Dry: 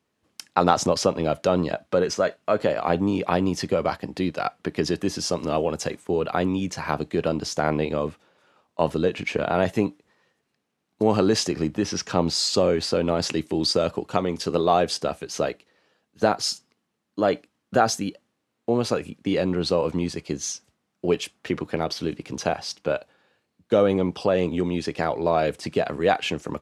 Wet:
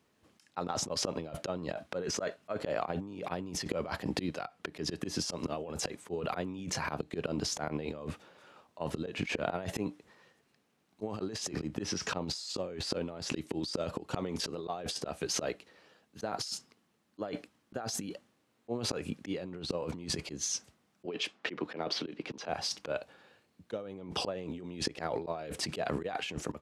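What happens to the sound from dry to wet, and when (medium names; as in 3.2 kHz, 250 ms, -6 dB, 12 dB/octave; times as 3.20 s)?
21.06–22.49 s: three-band isolator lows -18 dB, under 190 Hz, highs -19 dB, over 5.2 kHz
whole clip: slow attack 265 ms; compressor with a negative ratio -35 dBFS, ratio -1; trim -1.5 dB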